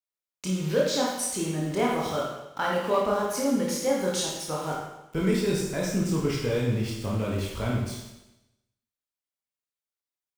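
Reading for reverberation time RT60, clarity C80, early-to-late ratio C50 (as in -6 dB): 0.95 s, 4.0 dB, 0.5 dB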